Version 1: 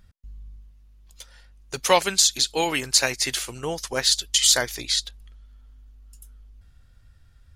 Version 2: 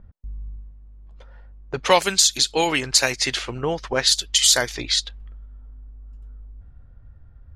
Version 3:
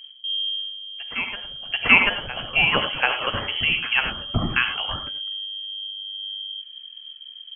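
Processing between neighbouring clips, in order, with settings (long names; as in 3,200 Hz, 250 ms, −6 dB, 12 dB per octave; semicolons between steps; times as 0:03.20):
low-pass that shuts in the quiet parts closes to 860 Hz, open at −17 dBFS; high-shelf EQ 12,000 Hz −3.5 dB; in parallel at +3 dB: downward compressor, threshold −30 dBFS, peak gain reduction 16.5 dB
backwards echo 737 ms −13.5 dB; reverb whose tail is shaped and stops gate 120 ms rising, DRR 7 dB; voice inversion scrambler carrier 3,200 Hz; level +1 dB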